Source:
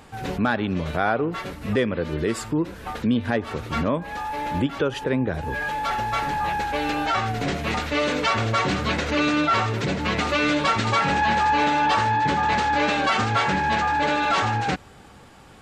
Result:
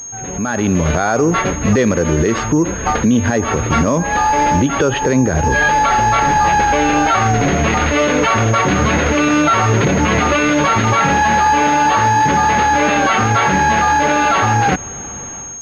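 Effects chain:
brickwall limiter −21 dBFS, peak gain reduction 11 dB
automatic gain control gain up to 16 dB
switching amplifier with a slow clock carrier 6,500 Hz

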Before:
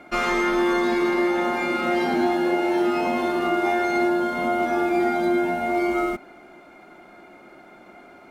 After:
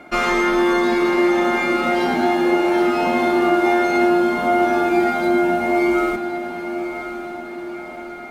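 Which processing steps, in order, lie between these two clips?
0:04.87–0:05.28: surface crackle 94 per second −35 dBFS
feedback delay with all-pass diffusion 1,067 ms, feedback 57%, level −10 dB
level +4 dB

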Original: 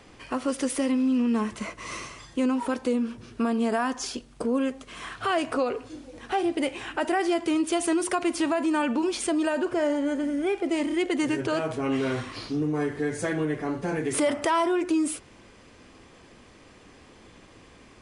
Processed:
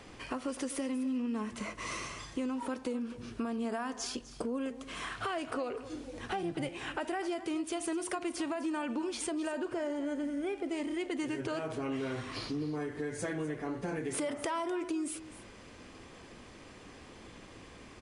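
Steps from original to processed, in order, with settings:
0:06.19–0:06.69: sub-octave generator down 1 octave, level −3 dB
downward compressor 3 to 1, threshold −36 dBFS, peak gain reduction 12 dB
single-tap delay 252 ms −15.5 dB

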